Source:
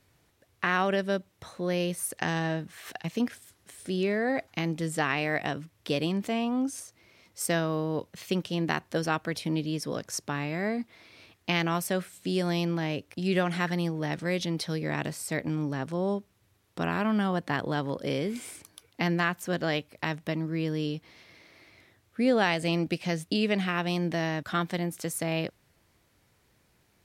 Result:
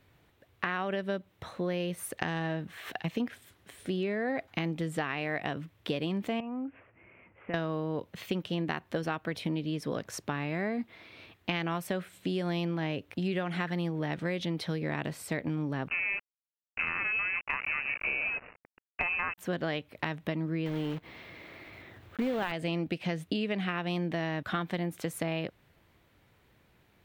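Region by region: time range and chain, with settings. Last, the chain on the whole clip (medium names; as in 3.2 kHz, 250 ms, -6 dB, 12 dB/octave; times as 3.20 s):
6.40–7.54 s: steep low-pass 2.7 kHz 72 dB/octave + compression 2.5:1, threshold -41 dBFS
15.88–19.38 s: word length cut 6-bit, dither none + frequency inversion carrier 2.8 kHz
20.66–22.54 s: block-companded coder 3-bit + treble shelf 4.8 kHz -11 dB + upward compressor, threshold -42 dBFS
whole clip: high-order bell 7.6 kHz -10 dB; compression, threshold -31 dBFS; trim +2.5 dB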